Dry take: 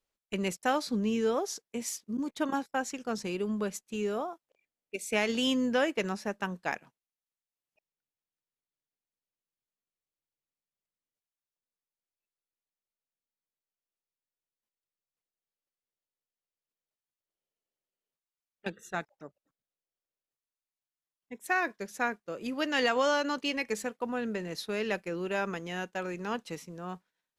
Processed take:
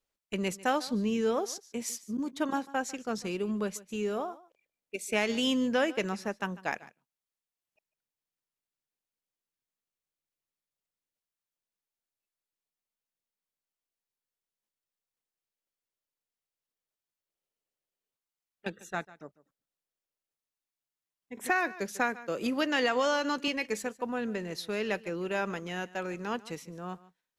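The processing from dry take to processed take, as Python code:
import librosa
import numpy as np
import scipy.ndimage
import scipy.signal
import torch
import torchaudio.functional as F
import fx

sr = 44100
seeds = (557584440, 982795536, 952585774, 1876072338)

y = x + 10.0 ** (-19.5 / 20.0) * np.pad(x, (int(147 * sr / 1000.0), 0))[:len(x)]
y = fx.band_squash(y, sr, depth_pct=70, at=(21.37, 23.48))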